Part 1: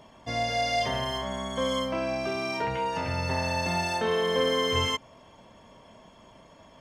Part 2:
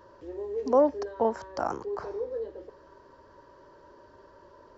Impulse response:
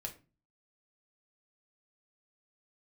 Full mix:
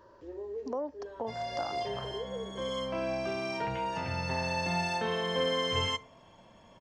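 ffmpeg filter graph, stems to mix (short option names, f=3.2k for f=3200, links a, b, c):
-filter_complex "[0:a]lowpass=8.6k,adelay=1000,volume=-6.5dB,asplit=2[a][b];[b]volume=-6dB[c];[1:a]acompressor=threshold=-33dB:ratio=2.5,volume=-3.5dB,asplit=2[d][e];[e]apad=whole_len=344078[f];[a][f]sidechaincompress=threshold=-48dB:ratio=8:attack=16:release=608[g];[2:a]atrim=start_sample=2205[h];[c][h]afir=irnorm=-1:irlink=0[i];[g][d][i]amix=inputs=3:normalize=0"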